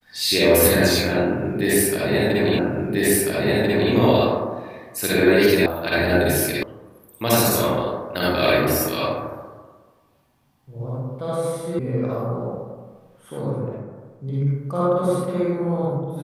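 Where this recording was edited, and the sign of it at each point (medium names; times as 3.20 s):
2.59 s: repeat of the last 1.34 s
5.66 s: sound stops dead
6.63 s: sound stops dead
11.79 s: sound stops dead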